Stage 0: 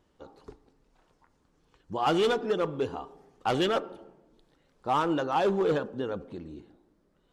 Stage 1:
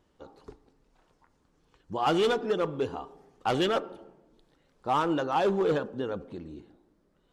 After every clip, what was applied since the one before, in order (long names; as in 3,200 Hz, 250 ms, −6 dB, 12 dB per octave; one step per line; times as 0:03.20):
no processing that can be heard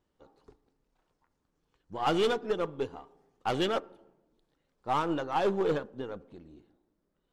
gain on one half-wave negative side −3 dB
expander for the loud parts 1.5 to 1, over −40 dBFS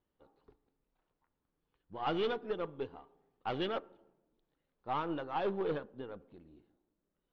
low-pass filter 4,000 Hz 24 dB per octave
level −6.5 dB